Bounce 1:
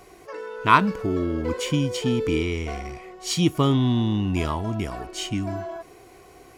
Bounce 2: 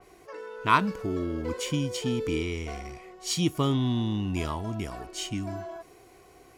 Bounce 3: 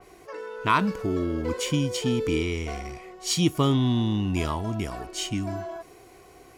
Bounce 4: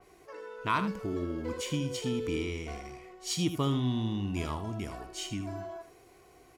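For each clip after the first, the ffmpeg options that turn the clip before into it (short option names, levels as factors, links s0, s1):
-af "adynamicequalizer=threshold=0.00708:dfrequency=3800:dqfactor=0.7:tfrequency=3800:tqfactor=0.7:attack=5:release=100:ratio=0.375:range=2:mode=boostabove:tftype=highshelf,volume=0.531"
-af "alimiter=level_in=3.55:limit=0.891:release=50:level=0:latency=1,volume=0.422"
-af "aecho=1:1:79:0.299,volume=0.422"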